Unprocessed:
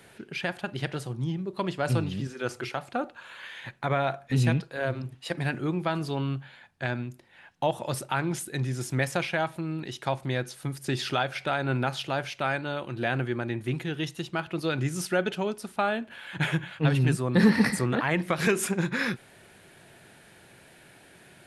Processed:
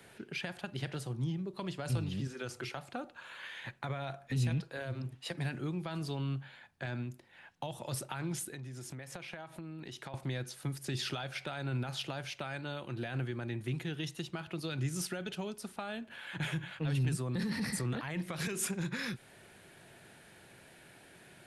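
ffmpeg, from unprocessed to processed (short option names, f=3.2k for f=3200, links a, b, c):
-filter_complex "[0:a]asettb=1/sr,asplit=3[a][b][c];[a]atrim=end=8.484[d];[b]atrim=start=8.48:end=10.14,asetpts=PTS-STARTPTS,afade=t=in:d=0.004:c=qsin,afade=t=out:st=1.656:d=0.004:c=qsin,acompressor=threshold=-37dB:ratio=12:attack=3.2:release=140:knee=1:detection=peak[e];[c]atrim=start=10.136[f];[d][e]acrossfade=d=0.004:c1=hsin:c2=qsin[g];[g][f]acrossfade=d=0.004:c1=qsin:c2=hsin,alimiter=limit=-19dB:level=0:latency=1:release=11,acrossover=split=170|3000[h][i][j];[i]acompressor=threshold=-35dB:ratio=6[k];[h][k][j]amix=inputs=3:normalize=0,volume=-3.5dB"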